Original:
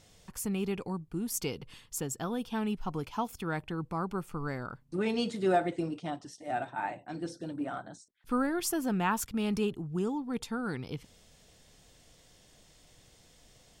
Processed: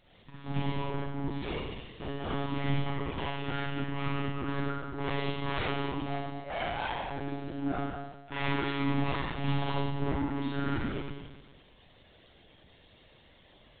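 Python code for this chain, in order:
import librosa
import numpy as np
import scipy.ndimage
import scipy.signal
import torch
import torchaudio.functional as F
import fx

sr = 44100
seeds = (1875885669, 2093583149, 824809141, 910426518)

y = scipy.signal.sosfilt(scipy.signal.butter(4, 96.0, 'highpass', fs=sr, output='sos'), x)
y = fx.hum_notches(y, sr, base_hz=60, count=7)
y = 10.0 ** (-31.0 / 20.0) * (np.abs((y / 10.0 ** (-31.0 / 20.0) + 3.0) % 4.0 - 2.0) - 1.0)
y = fx.room_early_taps(y, sr, ms=(24, 63, 75), db=(-10.0, -9.5, -16.5))
y = fx.rev_schroeder(y, sr, rt60_s=1.2, comb_ms=31, drr_db=-6.0)
y = fx.lpc_monotone(y, sr, seeds[0], pitch_hz=140.0, order=16)
y = y * librosa.db_to_amplitude(-2.5)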